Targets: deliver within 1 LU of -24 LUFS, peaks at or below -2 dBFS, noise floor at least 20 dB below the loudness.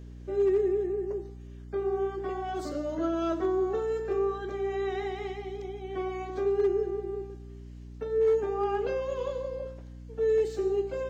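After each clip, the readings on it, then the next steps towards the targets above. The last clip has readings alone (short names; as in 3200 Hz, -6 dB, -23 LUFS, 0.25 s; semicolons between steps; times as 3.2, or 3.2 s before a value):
clipped 0.4%; flat tops at -19.5 dBFS; hum 60 Hz; harmonics up to 300 Hz; hum level -42 dBFS; loudness -30.0 LUFS; peak -19.5 dBFS; loudness target -24.0 LUFS
-> clip repair -19.5 dBFS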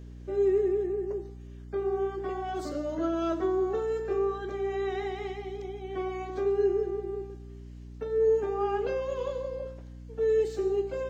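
clipped 0.0%; hum 60 Hz; harmonics up to 300 Hz; hum level -42 dBFS
-> notches 60/120/180/240/300 Hz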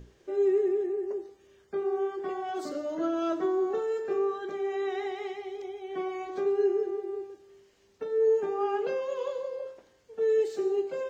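hum none; loudness -30.0 LUFS; peak -17.5 dBFS; loudness target -24.0 LUFS
-> gain +6 dB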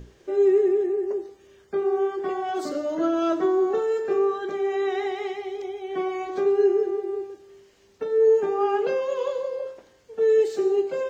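loudness -24.0 LUFS; peak -11.5 dBFS; noise floor -57 dBFS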